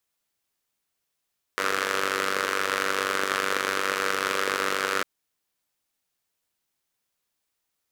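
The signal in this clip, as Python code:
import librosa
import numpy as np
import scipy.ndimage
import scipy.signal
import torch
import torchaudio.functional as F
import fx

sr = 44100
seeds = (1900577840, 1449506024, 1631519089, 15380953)

y = fx.engine_four(sr, seeds[0], length_s=3.45, rpm=2900, resonances_hz=(480.0, 1300.0))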